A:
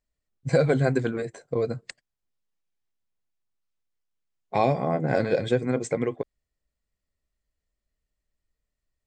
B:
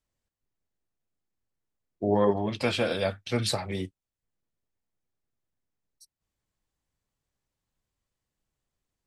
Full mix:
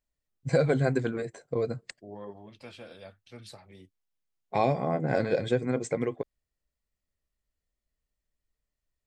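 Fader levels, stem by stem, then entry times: −3.0, −19.5 decibels; 0.00, 0.00 seconds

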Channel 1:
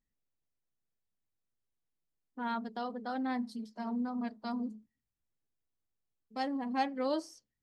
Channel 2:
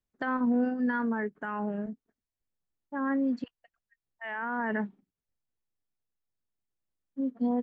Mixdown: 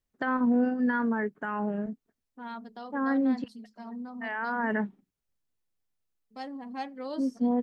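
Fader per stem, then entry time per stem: −4.5, +2.0 decibels; 0.00, 0.00 seconds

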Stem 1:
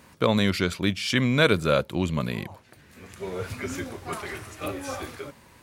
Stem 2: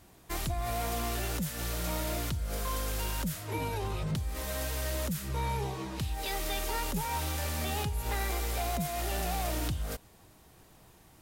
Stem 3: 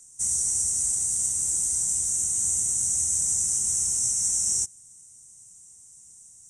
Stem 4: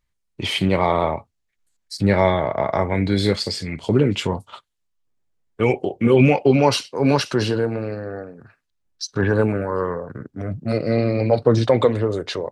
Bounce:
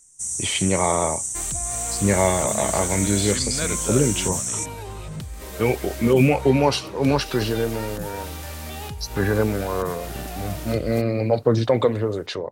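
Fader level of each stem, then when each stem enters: −9.5, −0.5, −2.5, −2.5 decibels; 2.20, 1.05, 0.00, 0.00 seconds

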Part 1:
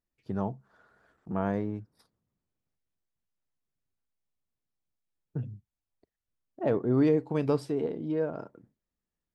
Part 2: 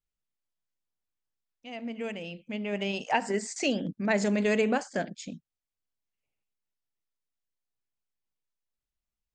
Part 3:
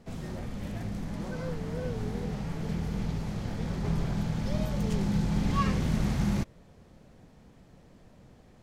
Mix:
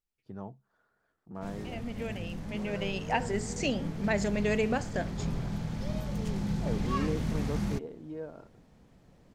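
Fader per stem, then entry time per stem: −10.5, −3.0, −4.0 decibels; 0.00, 0.00, 1.35 seconds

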